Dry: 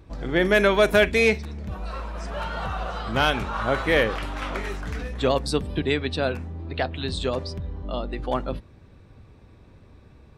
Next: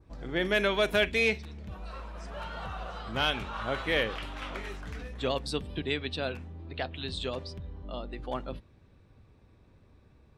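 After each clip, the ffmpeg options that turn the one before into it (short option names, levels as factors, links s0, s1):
-af "adynamicequalizer=threshold=0.01:dfrequency=3100:dqfactor=1.5:tfrequency=3100:tqfactor=1.5:attack=5:release=100:ratio=0.375:range=3.5:mode=boostabove:tftype=bell,volume=0.355"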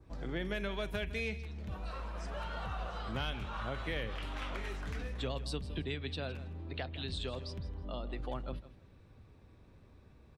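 -filter_complex "[0:a]acrossover=split=160[s0][s1];[s1]acompressor=threshold=0.01:ratio=3[s2];[s0][s2]amix=inputs=2:normalize=0,aecho=1:1:161|322:0.168|0.0302"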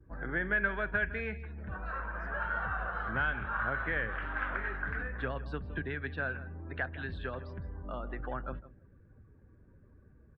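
-af "afftdn=nr=15:nf=-60,lowpass=f=1600:t=q:w=7.2"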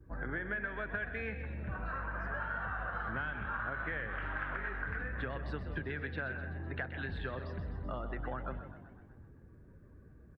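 -filter_complex "[0:a]acompressor=threshold=0.0141:ratio=6,asplit=2[s0][s1];[s1]asplit=7[s2][s3][s4][s5][s6][s7][s8];[s2]adelay=127,afreqshift=48,volume=0.266[s9];[s3]adelay=254,afreqshift=96,volume=0.157[s10];[s4]adelay=381,afreqshift=144,volume=0.0923[s11];[s5]adelay=508,afreqshift=192,volume=0.055[s12];[s6]adelay=635,afreqshift=240,volume=0.0324[s13];[s7]adelay=762,afreqshift=288,volume=0.0191[s14];[s8]adelay=889,afreqshift=336,volume=0.0112[s15];[s9][s10][s11][s12][s13][s14][s15]amix=inputs=7:normalize=0[s16];[s0][s16]amix=inputs=2:normalize=0,volume=1.26"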